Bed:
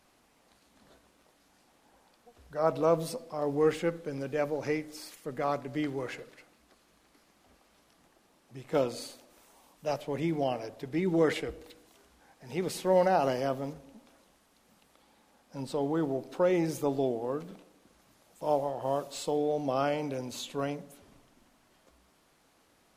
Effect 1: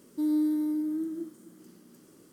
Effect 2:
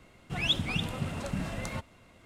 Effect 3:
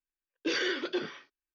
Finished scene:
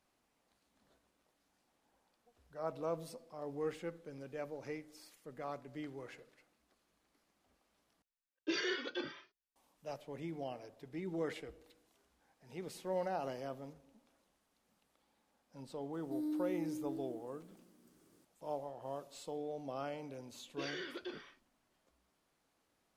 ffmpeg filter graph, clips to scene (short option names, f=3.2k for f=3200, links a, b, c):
-filter_complex "[3:a]asplit=2[a][b];[0:a]volume=-13dB[c];[a]asplit=2[d][e];[e]adelay=2.4,afreqshift=1.5[f];[d][f]amix=inputs=2:normalize=1[g];[b]alimiter=limit=-24dB:level=0:latency=1:release=71[h];[c]asplit=2[i][j];[i]atrim=end=8.024[k];[g]atrim=end=1.54,asetpts=PTS-STARTPTS,volume=-3.5dB[l];[j]atrim=start=9.556[m];[1:a]atrim=end=2.32,asetpts=PTS-STARTPTS,volume=-12dB,afade=t=in:d=0.004:c=hsin,afade=t=out:st=2.316:d=0.004:c=hsin,adelay=15930[n];[h]atrim=end=1.54,asetpts=PTS-STARTPTS,volume=-11dB,afade=t=in:d=0.004:c=hsin,afade=t=out:st=1.536:d=0.004:c=hsin,adelay=20120[o];[k][l]acrossfade=d=0.004:c1=hsin:c2=hsin[p];[p][m]acrossfade=d=0.004:c1=hsin:c2=hsin[q];[q][n][o]amix=inputs=3:normalize=0"